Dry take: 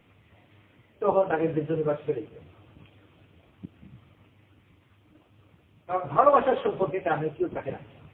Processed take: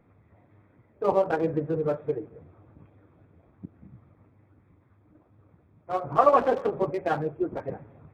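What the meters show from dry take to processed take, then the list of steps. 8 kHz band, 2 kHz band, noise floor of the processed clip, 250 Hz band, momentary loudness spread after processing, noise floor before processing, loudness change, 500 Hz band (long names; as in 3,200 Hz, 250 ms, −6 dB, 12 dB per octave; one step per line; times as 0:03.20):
can't be measured, −2.0 dB, −62 dBFS, 0.0 dB, 15 LU, −61 dBFS, −0.5 dB, 0.0 dB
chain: adaptive Wiener filter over 15 samples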